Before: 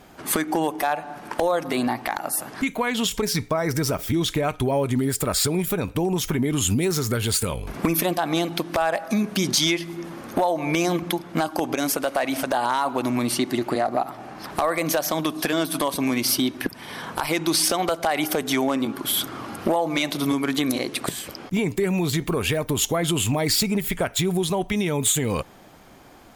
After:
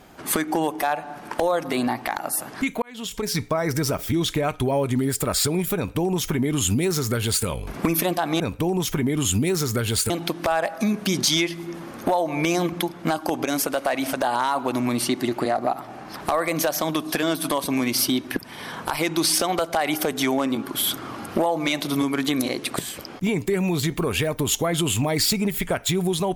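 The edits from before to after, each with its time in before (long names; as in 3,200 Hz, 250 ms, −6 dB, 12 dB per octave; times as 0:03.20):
0:02.82–0:03.40: fade in
0:05.76–0:07.46: duplicate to 0:08.40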